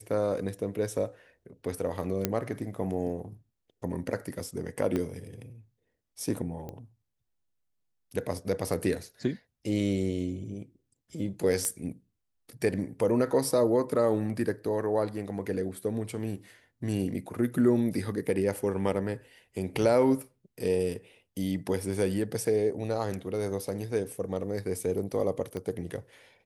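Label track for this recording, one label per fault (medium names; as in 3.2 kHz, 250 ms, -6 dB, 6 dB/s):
2.250000	2.250000	pop -10 dBFS
4.960000	4.960000	pop -18 dBFS
6.690000	6.690000	pop -26 dBFS
11.650000	11.650000	pop -16 dBFS
25.570000	25.570000	pop -23 dBFS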